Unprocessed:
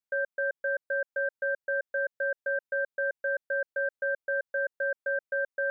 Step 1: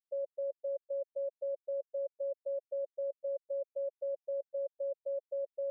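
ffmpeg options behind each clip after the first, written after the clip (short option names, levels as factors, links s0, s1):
-af "lowpass=f=1100:w=0.5412,lowpass=f=1100:w=1.3066,afftfilt=real='re*gte(hypot(re,im),0.1)':imag='im*gte(hypot(re,im),0.1)':win_size=1024:overlap=0.75,areverse,acompressor=mode=upward:threshold=0.00891:ratio=2.5,areverse,volume=0.708"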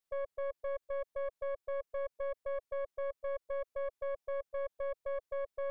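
-af "alimiter=level_in=4.47:limit=0.0631:level=0:latency=1:release=51,volume=0.224,aeval=exprs='(tanh(126*val(0)+0.55)-tanh(0.55))/126':c=same,volume=2.82"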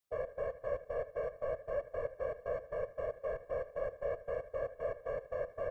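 -af "aeval=exprs='if(lt(val(0),0),0.708*val(0),val(0))':c=same,aecho=1:1:78|156|234|312:0.178|0.0765|0.0329|0.0141,afftfilt=real='hypot(re,im)*cos(2*PI*random(0))':imag='hypot(re,im)*sin(2*PI*random(1))':win_size=512:overlap=0.75,volume=2.51"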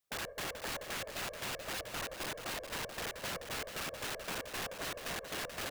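-af "aeval=exprs='(mod(66.8*val(0)+1,2)-1)/66.8':c=same,aecho=1:1:432:0.376,volume=1.26"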